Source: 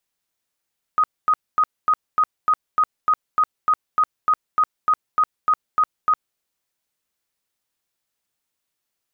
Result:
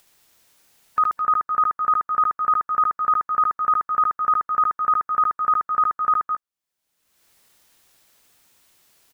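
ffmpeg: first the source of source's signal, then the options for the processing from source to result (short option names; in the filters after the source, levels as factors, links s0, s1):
-f lavfi -i "aevalsrc='0.224*sin(2*PI*1250*mod(t,0.3))*lt(mod(t,0.3),72/1250)':d=5.4:s=44100"
-af "afftdn=nr=16:nf=-39,acompressor=mode=upward:threshold=0.02:ratio=2.5,aecho=1:1:73|212|228:0.631|0.355|0.168"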